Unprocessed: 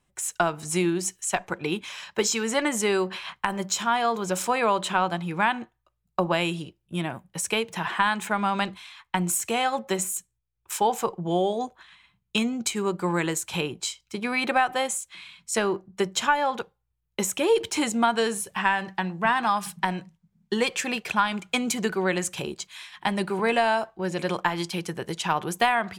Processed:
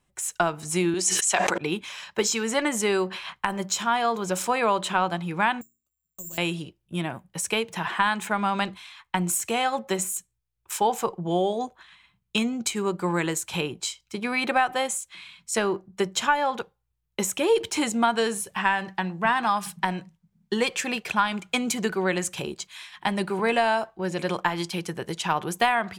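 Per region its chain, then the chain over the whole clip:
0:00.94–0:01.58: band-pass filter 260–7,700 Hz + high-shelf EQ 3,900 Hz +10 dB + level that may fall only so fast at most 20 dB per second
0:05.61–0:06.38: guitar amp tone stack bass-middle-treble 10-0-1 + mains-hum notches 60/120/180/240/300/360/420 Hz + bad sample-rate conversion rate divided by 6×, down none, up zero stuff
whole clip: no processing

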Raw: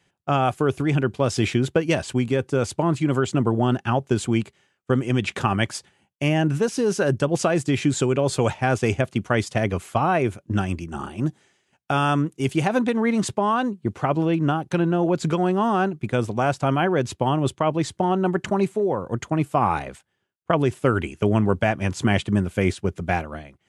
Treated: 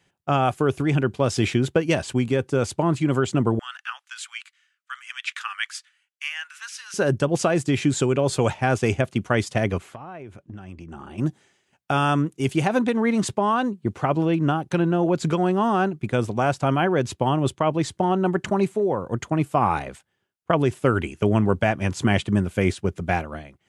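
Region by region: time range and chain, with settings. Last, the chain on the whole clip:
0:03.59–0:06.94: Butterworth high-pass 1,300 Hz + high-shelf EQ 7,000 Hz −6.5 dB
0:09.78–0:11.18: low-pass filter 3,100 Hz 6 dB per octave + downward compressor 12 to 1, threshold −34 dBFS
whole clip: no processing

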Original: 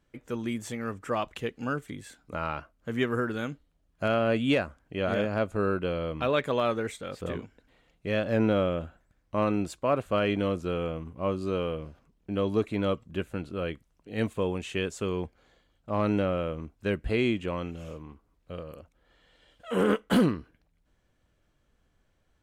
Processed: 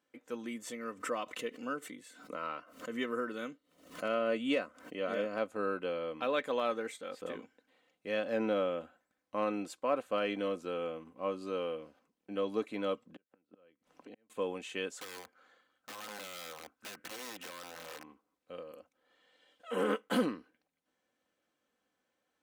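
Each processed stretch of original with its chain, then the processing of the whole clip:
0:00.46–0:05.38: notch comb filter 810 Hz + background raised ahead of every attack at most 100 dB per second
0:13.05–0:14.30: low-pass filter 2,000 Hz 6 dB per octave + gate with flip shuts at −28 dBFS, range −37 dB + multiband upward and downward compressor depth 100%
0:14.97–0:18.03: parametric band 1,400 Hz +12 dB 0.72 octaves + downward compressor 12 to 1, threshold −32 dBFS + wrap-around overflow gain 33 dB
whole clip: high-pass filter 300 Hz 12 dB per octave; comb filter 3.9 ms, depth 42%; level −6 dB

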